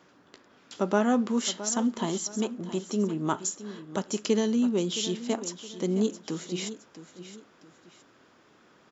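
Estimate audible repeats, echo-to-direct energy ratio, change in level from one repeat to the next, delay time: 2, -13.0 dB, -9.0 dB, 667 ms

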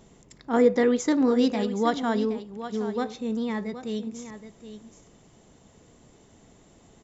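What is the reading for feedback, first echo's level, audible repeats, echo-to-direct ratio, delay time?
no regular repeats, -12.0 dB, 1, -12.0 dB, 771 ms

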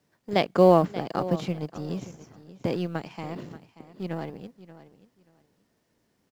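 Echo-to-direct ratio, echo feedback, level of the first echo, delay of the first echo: -16.0 dB, 19%, -16.0 dB, 582 ms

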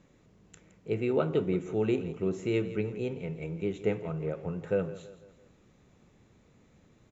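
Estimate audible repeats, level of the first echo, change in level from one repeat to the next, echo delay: 3, -15.0 dB, -7.0 dB, 167 ms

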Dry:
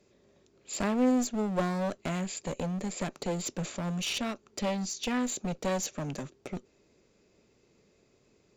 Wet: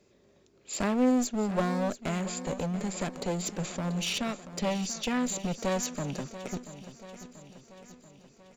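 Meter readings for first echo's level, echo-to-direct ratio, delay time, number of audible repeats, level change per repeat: -13.5 dB, -12.0 dB, 685 ms, 5, -5.0 dB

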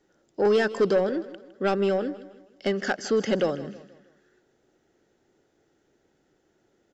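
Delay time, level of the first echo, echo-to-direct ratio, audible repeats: 159 ms, -16.0 dB, -15.0 dB, 3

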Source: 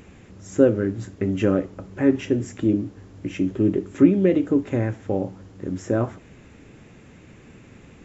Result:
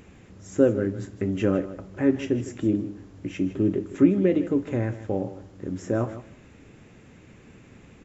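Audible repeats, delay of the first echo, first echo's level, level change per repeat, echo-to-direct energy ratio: 2, 157 ms, -14.0 dB, -15.5 dB, -14.0 dB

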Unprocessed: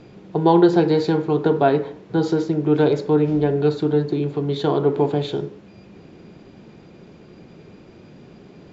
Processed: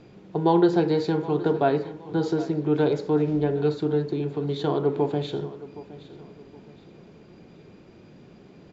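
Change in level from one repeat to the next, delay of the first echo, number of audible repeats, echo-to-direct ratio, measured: -9.5 dB, 768 ms, 2, -16.5 dB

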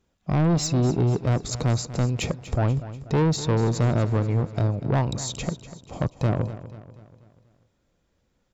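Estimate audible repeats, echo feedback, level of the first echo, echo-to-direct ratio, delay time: 4, 49%, -14.5 dB, -13.5 dB, 243 ms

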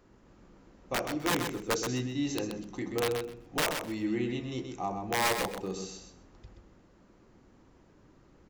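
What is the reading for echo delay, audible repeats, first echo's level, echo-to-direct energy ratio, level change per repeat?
128 ms, 2, -6.5 dB, -6.5 dB, -15.5 dB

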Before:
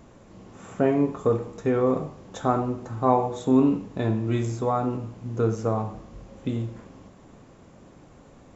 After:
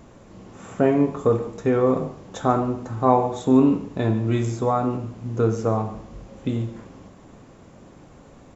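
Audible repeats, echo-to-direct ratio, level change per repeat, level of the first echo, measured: 1, -17.0 dB, no regular repeats, -17.0 dB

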